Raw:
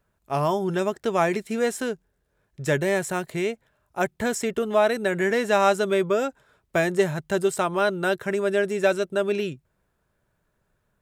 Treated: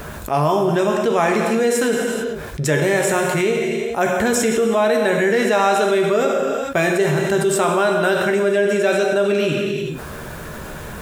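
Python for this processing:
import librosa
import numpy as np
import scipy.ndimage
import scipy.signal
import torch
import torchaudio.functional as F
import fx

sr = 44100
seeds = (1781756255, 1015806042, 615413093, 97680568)

y = fx.low_shelf(x, sr, hz=61.0, db=-7.0)
y = fx.doubler(y, sr, ms=13.0, db=-12.0)
y = fx.rev_gated(y, sr, seeds[0], gate_ms=460, shape='falling', drr_db=3.5)
y = fx.env_flatten(y, sr, amount_pct=70)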